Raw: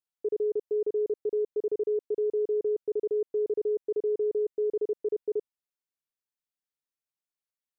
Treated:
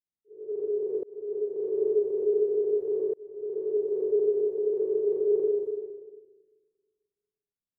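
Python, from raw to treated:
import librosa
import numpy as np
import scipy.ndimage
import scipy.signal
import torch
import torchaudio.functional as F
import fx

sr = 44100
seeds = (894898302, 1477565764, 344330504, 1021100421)

y = fx.rev_schroeder(x, sr, rt60_s=1.8, comb_ms=30, drr_db=-8.0)
y = fx.auto_swell(y, sr, attack_ms=770.0)
y = fx.env_lowpass(y, sr, base_hz=310.0, full_db=-24.5)
y = F.gain(torch.from_numpy(y), -1.0).numpy()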